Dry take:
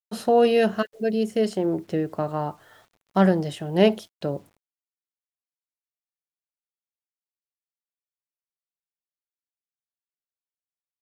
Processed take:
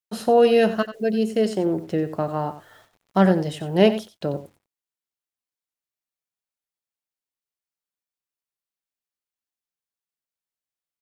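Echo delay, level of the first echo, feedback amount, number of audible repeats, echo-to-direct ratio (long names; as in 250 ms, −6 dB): 91 ms, −13.0 dB, repeats not evenly spaced, 1, −13.0 dB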